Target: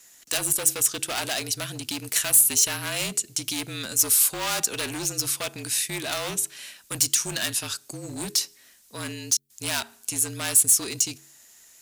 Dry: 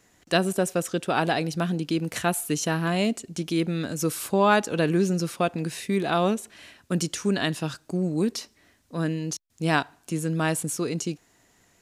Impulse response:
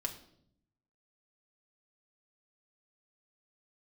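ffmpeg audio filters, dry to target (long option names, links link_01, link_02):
-af "bass=frequency=250:gain=-6,treble=frequency=4000:gain=0,bandreject=frequency=90.95:width_type=h:width=4,bandreject=frequency=181.9:width_type=h:width=4,bandreject=frequency=272.85:width_type=h:width=4,bandreject=frequency=363.8:width_type=h:width=4,bandreject=frequency=454.75:width_type=h:width=4,afreqshift=-41,volume=25.5dB,asoftclip=hard,volume=-25.5dB,crystalizer=i=9:c=0,volume=-6dB"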